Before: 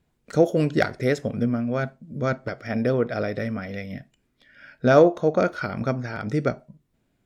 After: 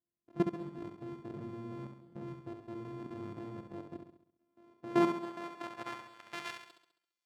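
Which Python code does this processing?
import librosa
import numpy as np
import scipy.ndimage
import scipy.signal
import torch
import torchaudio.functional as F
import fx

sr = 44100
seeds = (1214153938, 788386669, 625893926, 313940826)

y = np.r_[np.sort(x[:len(x) // 128 * 128].reshape(-1, 128), axis=1).ravel(), x[len(x) // 128 * 128:]]
y = fx.filter_sweep_bandpass(y, sr, from_hz=230.0, to_hz=5500.0, start_s=4.42, end_s=7.25, q=0.77)
y = fx.dynamic_eq(y, sr, hz=630.0, q=1.4, threshold_db=-36.0, ratio=4.0, max_db=-5)
y = fx.level_steps(y, sr, step_db=18)
y = fx.low_shelf(y, sr, hz=180.0, db=-7.5)
y = fx.room_flutter(y, sr, wall_m=11.6, rt60_s=0.66)
y = y * librosa.db_to_amplitude(-4.5)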